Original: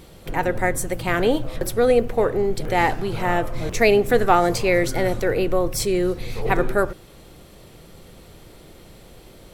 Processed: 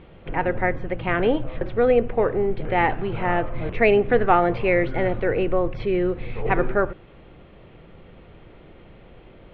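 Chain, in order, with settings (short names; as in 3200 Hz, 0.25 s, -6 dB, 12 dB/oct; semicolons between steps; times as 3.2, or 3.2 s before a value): steep low-pass 3000 Hz 36 dB/oct; gain -1 dB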